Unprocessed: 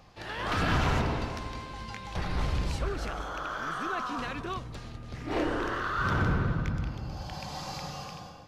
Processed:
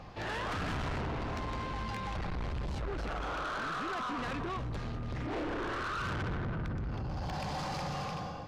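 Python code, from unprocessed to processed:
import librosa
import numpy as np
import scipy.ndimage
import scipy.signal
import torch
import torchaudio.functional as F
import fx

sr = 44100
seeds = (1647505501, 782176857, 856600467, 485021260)

p1 = fx.lowpass(x, sr, hz=2200.0, slope=6)
p2 = fx.over_compress(p1, sr, threshold_db=-39.0, ratio=-1.0)
p3 = p1 + (p2 * librosa.db_to_amplitude(-1.5))
y = 10.0 ** (-33.0 / 20.0) * np.tanh(p3 / 10.0 ** (-33.0 / 20.0))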